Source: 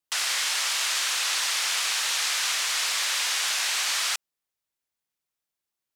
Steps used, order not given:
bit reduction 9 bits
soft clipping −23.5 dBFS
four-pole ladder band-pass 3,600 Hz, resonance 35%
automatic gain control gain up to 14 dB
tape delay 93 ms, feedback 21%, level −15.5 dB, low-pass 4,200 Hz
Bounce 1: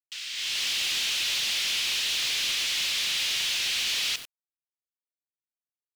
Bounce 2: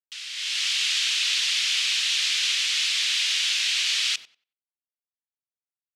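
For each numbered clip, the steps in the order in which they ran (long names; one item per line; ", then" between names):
four-pole ladder band-pass, then tape delay, then bit reduction, then automatic gain control, then soft clipping
bit reduction, then four-pole ladder band-pass, then soft clipping, then automatic gain control, then tape delay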